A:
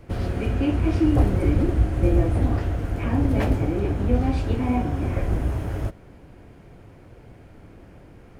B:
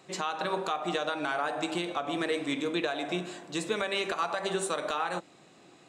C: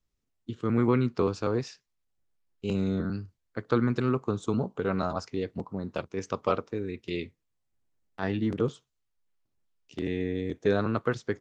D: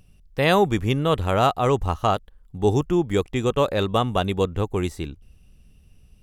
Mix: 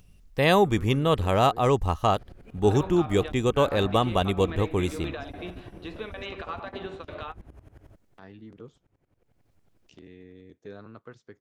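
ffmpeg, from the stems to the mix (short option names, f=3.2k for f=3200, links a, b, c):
-filter_complex "[0:a]aeval=exprs='val(0)*pow(10,-22*if(lt(mod(-11*n/s,1),2*abs(-11)/1000),1-mod(-11*n/s,1)/(2*abs(-11)/1000),(mod(-11*n/s,1)-2*abs(-11)/1000)/(1-2*abs(-11)/1000))/20)':c=same,adelay=2050,volume=-17dB[a];[1:a]lowpass=f=3.7k:w=0.5412,lowpass=f=3.7k:w=1.3066,adelay=2300,volume=-6dB[b];[2:a]acompressor=mode=upward:threshold=-27dB:ratio=2.5,volume=-18dB,asplit=2[c][d];[3:a]bandreject=f=1.4k:w=12,volume=-1.5dB[e];[d]apad=whole_len=360811[f];[b][f]sidechaingate=range=-33dB:threshold=-58dB:ratio=16:detection=peak[g];[a][g][c][e]amix=inputs=4:normalize=0"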